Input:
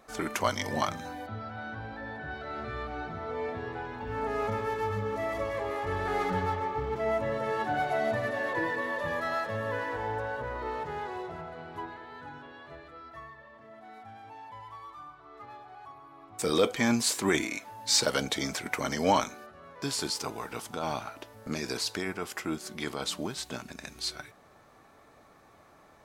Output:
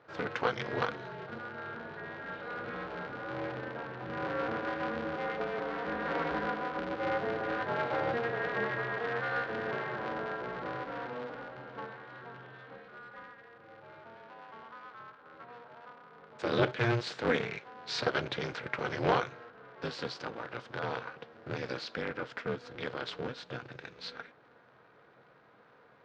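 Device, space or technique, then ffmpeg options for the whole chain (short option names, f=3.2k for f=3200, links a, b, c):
ring modulator pedal into a guitar cabinet: -af "aeval=exprs='val(0)*sgn(sin(2*PI*120*n/s))':c=same,highpass=110,equalizer=f=130:t=q:w=4:g=10,equalizer=f=470:t=q:w=4:g=8,equalizer=f=1.5k:t=q:w=4:g=7,lowpass=f=4.2k:w=0.5412,lowpass=f=4.2k:w=1.3066,volume=-5.5dB"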